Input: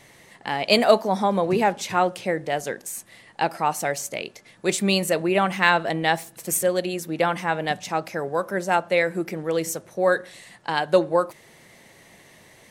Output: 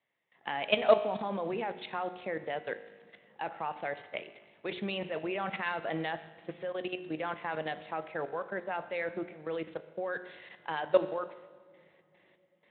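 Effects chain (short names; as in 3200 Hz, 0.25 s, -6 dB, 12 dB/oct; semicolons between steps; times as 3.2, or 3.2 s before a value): gate with hold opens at -40 dBFS; low shelf 220 Hz -11 dB; notches 60/120/180/240/300/360/420 Hz; level quantiser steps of 16 dB; resonator 52 Hz, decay 1.3 s, harmonics all, mix 60%; soft clip -13 dBFS, distortion -24 dB; on a send at -24 dB: reverb RT60 3.5 s, pre-delay 3 ms; on the sum: gain +4.5 dB; Speex 24 kbps 8000 Hz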